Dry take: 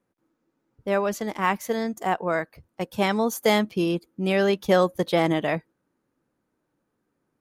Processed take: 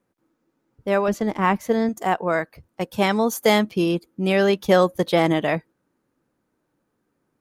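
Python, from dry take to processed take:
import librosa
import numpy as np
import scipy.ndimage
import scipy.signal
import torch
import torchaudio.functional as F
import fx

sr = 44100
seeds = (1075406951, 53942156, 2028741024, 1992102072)

y = fx.tilt_eq(x, sr, slope=-2.0, at=(1.08, 1.89))
y = y * librosa.db_to_amplitude(3.0)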